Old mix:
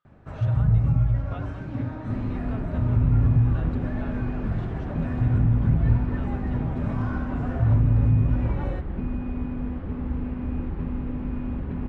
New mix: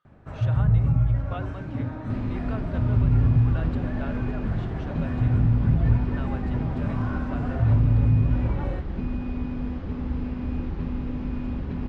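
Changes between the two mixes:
speech +5.5 dB
second sound: remove low-pass filter 2,400 Hz 12 dB per octave

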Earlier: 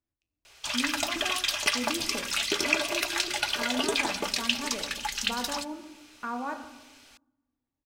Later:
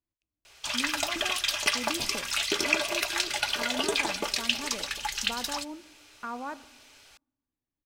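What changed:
speech: send −11.5 dB
second sound +4.0 dB

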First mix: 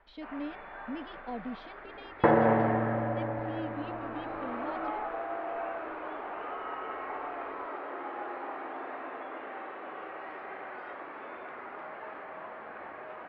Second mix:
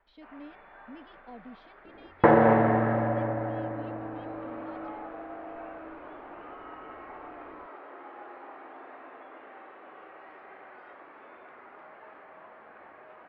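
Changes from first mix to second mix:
speech −8.0 dB
first sound −7.0 dB
second sound +4.0 dB

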